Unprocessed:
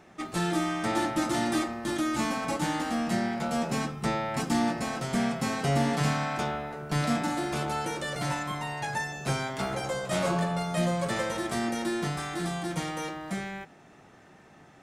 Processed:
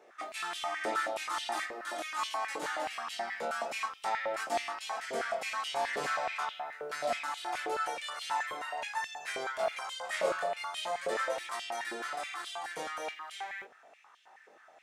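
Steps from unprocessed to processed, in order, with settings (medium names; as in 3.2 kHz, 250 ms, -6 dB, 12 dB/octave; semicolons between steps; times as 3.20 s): chorus 0.43 Hz, delay 20 ms, depth 6.9 ms; step-sequenced high-pass 9.4 Hz 480–3100 Hz; trim -4 dB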